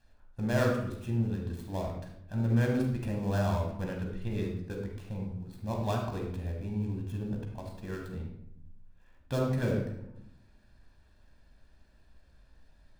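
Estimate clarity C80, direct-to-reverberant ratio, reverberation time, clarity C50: 7.0 dB, 0.5 dB, 0.80 s, 3.5 dB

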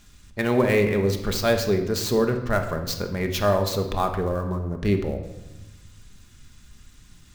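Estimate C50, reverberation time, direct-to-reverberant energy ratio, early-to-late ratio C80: 8.5 dB, 1.0 s, 4.5 dB, 11.0 dB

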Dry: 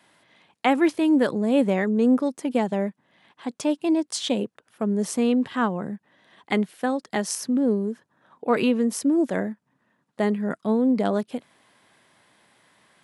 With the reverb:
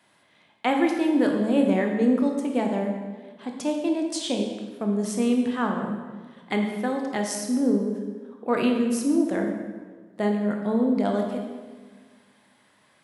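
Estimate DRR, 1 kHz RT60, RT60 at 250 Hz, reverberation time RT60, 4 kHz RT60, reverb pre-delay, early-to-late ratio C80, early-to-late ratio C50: 2.0 dB, 1.4 s, 1.8 s, 1.5 s, 1.1 s, 18 ms, 6.0 dB, 4.0 dB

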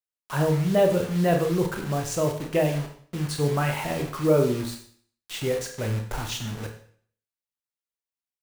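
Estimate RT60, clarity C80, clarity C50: 0.55 s, 11.0 dB, 7.5 dB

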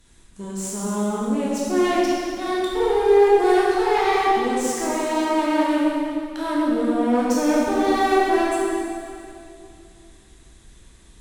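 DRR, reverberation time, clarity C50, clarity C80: -6.0 dB, 2.6 s, -3.0 dB, -1.5 dB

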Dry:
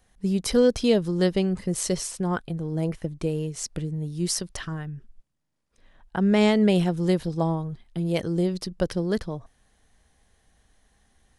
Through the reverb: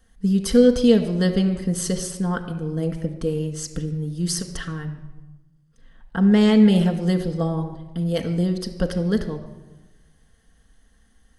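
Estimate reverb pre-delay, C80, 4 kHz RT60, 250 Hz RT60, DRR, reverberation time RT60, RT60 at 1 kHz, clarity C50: 4 ms, 11.5 dB, 0.75 s, 1.4 s, 4.0 dB, 1.1 s, 1.1 s, 10.0 dB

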